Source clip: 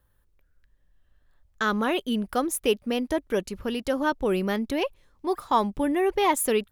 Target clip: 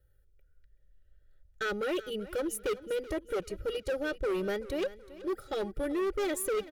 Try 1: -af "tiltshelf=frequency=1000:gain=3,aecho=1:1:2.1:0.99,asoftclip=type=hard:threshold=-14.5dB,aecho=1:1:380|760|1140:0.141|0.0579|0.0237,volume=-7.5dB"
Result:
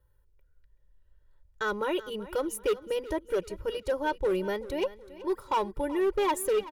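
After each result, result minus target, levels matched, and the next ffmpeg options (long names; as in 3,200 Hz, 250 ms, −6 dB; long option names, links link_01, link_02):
1,000 Hz band +6.0 dB; hard clipping: distortion −7 dB
-af "asuperstop=centerf=1000:order=12:qfactor=2.7,tiltshelf=frequency=1000:gain=3,aecho=1:1:2.1:0.99,asoftclip=type=hard:threshold=-14.5dB,aecho=1:1:380|760|1140:0.141|0.0579|0.0237,volume=-7.5dB"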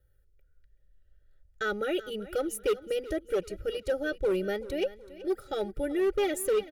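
hard clipping: distortion −7 dB
-af "asuperstop=centerf=1000:order=12:qfactor=2.7,tiltshelf=frequency=1000:gain=3,aecho=1:1:2.1:0.99,asoftclip=type=hard:threshold=-20.5dB,aecho=1:1:380|760|1140:0.141|0.0579|0.0237,volume=-7.5dB"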